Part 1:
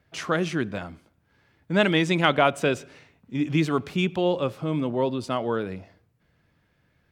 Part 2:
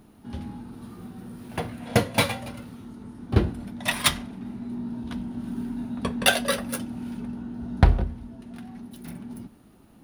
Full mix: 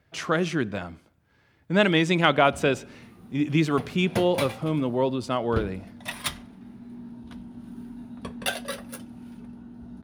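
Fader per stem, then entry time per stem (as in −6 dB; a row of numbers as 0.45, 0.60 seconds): +0.5, −8.5 decibels; 0.00, 2.20 seconds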